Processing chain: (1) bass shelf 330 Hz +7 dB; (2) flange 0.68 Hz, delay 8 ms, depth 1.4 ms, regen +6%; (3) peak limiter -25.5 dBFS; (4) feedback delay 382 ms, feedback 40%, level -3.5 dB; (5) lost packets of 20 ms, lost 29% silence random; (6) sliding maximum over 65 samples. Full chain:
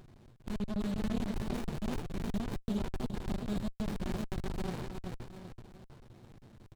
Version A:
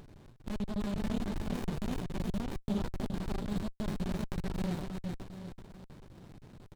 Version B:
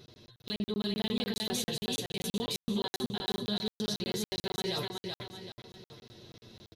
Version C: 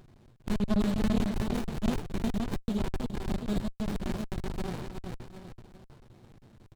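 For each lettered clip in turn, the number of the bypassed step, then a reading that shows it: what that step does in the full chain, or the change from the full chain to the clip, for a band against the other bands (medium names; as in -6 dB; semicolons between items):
2, momentary loudness spread change -3 LU; 6, crest factor change +1.5 dB; 3, mean gain reduction 2.0 dB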